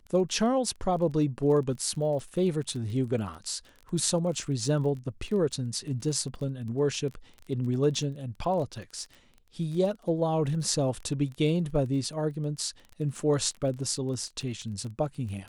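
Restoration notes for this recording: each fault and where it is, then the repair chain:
crackle 22 per s -36 dBFS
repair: de-click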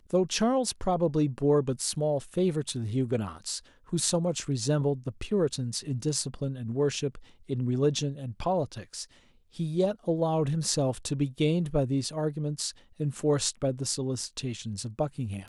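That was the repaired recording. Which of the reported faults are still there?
nothing left

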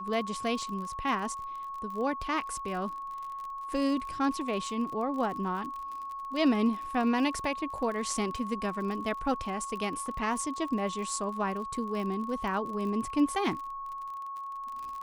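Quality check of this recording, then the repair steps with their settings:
crackle 41 per s -37 dBFS
whine 1.1 kHz -36 dBFS
10.06 s: dropout 2.4 ms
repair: de-click; band-stop 1.1 kHz, Q 30; interpolate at 10.06 s, 2.4 ms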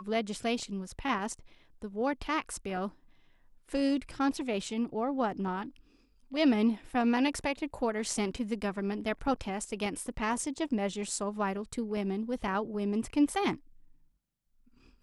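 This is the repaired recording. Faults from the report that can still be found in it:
nothing left

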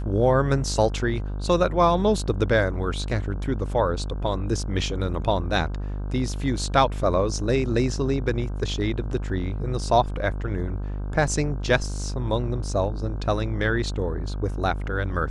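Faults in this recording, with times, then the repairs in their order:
buzz 50 Hz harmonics 32 -29 dBFS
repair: de-hum 50 Hz, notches 32

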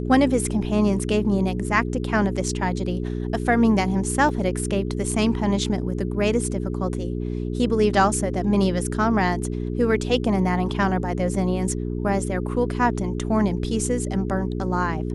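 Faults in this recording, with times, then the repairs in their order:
hum 60 Hz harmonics 7 -27 dBFS
4.29 s: dropout 2 ms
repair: de-hum 60 Hz, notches 7; interpolate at 4.29 s, 2 ms

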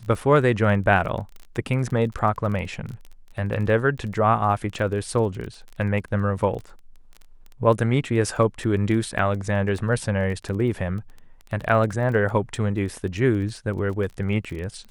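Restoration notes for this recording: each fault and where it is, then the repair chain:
crackle 20 per s -31 dBFS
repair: de-click

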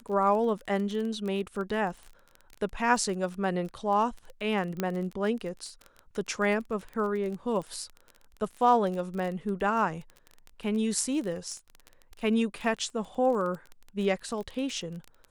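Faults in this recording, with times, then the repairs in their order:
crackle 22 per s -34 dBFS
4.80 s: pop -15 dBFS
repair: de-click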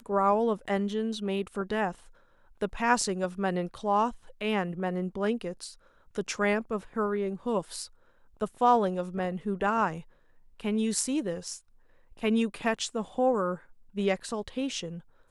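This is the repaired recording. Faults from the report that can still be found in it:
nothing left

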